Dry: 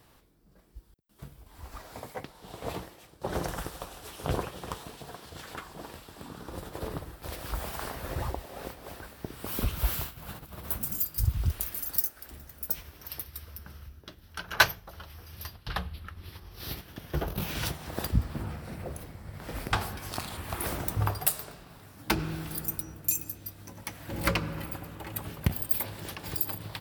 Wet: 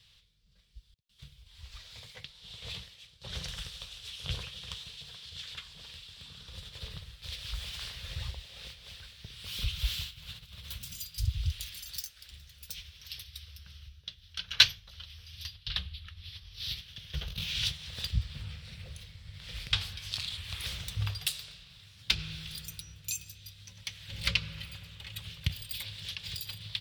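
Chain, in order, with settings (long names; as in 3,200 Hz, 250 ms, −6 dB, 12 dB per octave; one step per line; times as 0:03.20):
drawn EQ curve 100 Hz 0 dB, 170 Hz −6 dB, 310 Hz −25 dB, 490 Hz −12 dB, 740 Hz −19 dB, 1,500 Hz −7 dB, 3,500 Hz +14 dB, 14,000 Hz −12 dB
level −3.5 dB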